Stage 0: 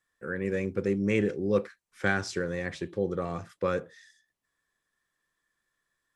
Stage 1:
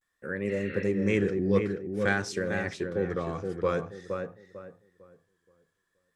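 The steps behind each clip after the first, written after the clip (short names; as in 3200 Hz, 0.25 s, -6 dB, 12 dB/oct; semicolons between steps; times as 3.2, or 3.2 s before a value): spectral repair 0.52–0.83, 1200–4400 Hz after; darkening echo 0.462 s, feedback 30%, low-pass 2000 Hz, level -5 dB; vibrato 0.5 Hz 70 cents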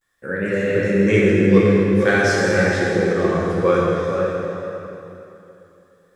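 plate-style reverb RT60 2.8 s, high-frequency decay 0.85×, DRR -5 dB; gain +6 dB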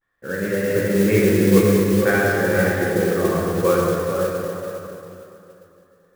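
LPF 2100 Hz 12 dB/oct; modulation noise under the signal 17 dB; gain -1 dB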